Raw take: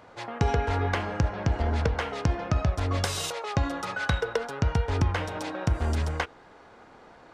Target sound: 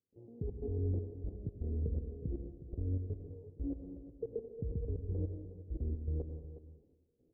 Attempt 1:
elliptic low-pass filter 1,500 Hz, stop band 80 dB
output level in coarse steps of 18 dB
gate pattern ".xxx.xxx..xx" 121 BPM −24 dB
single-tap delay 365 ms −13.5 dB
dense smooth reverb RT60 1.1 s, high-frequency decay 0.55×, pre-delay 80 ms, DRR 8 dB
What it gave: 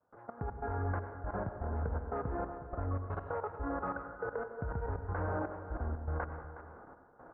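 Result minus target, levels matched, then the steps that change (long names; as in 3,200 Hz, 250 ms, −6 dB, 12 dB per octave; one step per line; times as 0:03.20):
500 Hz band +3.0 dB
change: elliptic low-pass filter 430 Hz, stop band 80 dB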